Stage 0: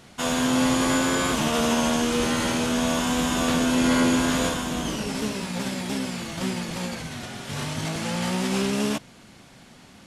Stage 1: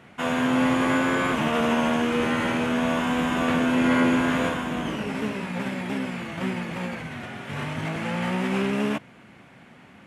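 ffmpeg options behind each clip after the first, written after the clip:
ffmpeg -i in.wav -af "highpass=86,highshelf=frequency=3300:width_type=q:width=1.5:gain=-11.5" out.wav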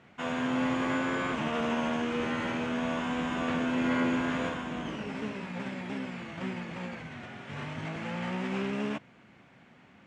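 ffmpeg -i in.wav -af "lowpass=frequency=7500:width=0.5412,lowpass=frequency=7500:width=1.3066,volume=-7.5dB" out.wav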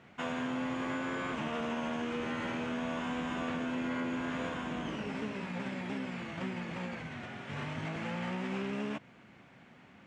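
ffmpeg -i in.wav -af "acompressor=threshold=-33dB:ratio=4" out.wav

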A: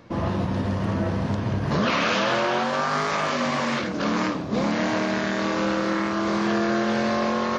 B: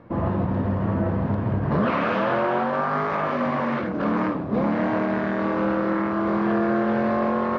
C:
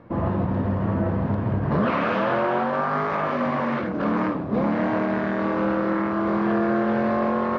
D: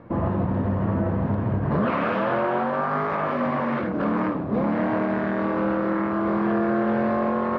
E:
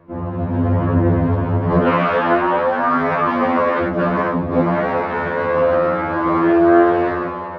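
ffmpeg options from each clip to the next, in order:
ffmpeg -i in.wav -af "lowpass=1500,volume=1.5dB" out.wav
ffmpeg -i in.wav -af anull out.wav
ffmpeg -i in.wav -filter_complex "[0:a]aemphasis=mode=reproduction:type=50fm,asplit=2[link_01][link_02];[link_02]alimiter=limit=-20.5dB:level=0:latency=1:release=282,volume=1dB[link_03];[link_01][link_03]amix=inputs=2:normalize=0,volume=-4.5dB" out.wav
ffmpeg -i in.wav -af "dynaudnorm=framelen=150:gausssize=7:maxgain=14dB,afftfilt=real='re*2*eq(mod(b,4),0)':imag='im*2*eq(mod(b,4),0)':win_size=2048:overlap=0.75,volume=-1dB" out.wav

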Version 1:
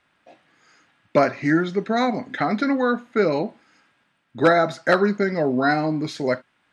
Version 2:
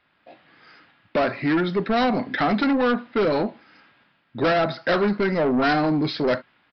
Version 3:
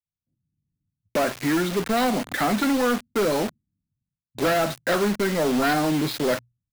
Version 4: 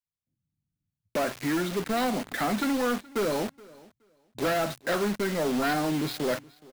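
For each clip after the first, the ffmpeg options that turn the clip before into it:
ffmpeg -i in.wav -af "dynaudnorm=framelen=160:gausssize=5:maxgain=7dB,aresample=11025,asoftclip=type=tanh:threshold=-16.5dB,aresample=44100" out.wav
ffmpeg -i in.wav -filter_complex "[0:a]agate=range=-33dB:threshold=-57dB:ratio=3:detection=peak,bandreject=frequency=60:width_type=h:width=6,bandreject=frequency=120:width_type=h:width=6,acrossover=split=130[link_01][link_02];[link_02]acrusher=bits=4:mix=0:aa=0.000001[link_03];[link_01][link_03]amix=inputs=2:normalize=0,volume=-1.5dB" out.wav
ffmpeg -i in.wav -af "aecho=1:1:422|844:0.0708|0.0127,volume=-5dB" out.wav

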